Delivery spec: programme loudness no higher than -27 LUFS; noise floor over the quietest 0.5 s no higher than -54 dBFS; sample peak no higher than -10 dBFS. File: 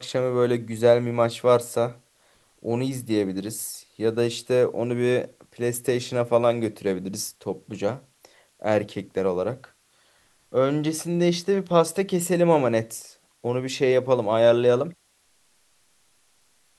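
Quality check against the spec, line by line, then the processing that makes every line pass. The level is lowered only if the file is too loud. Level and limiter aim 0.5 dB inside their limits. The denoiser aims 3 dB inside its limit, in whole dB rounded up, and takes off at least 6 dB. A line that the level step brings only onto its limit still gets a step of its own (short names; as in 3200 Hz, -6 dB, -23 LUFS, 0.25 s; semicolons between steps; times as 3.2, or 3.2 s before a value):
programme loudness -24.0 LUFS: fail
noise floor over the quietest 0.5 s -64 dBFS: OK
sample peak -4.5 dBFS: fail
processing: gain -3.5 dB; limiter -10.5 dBFS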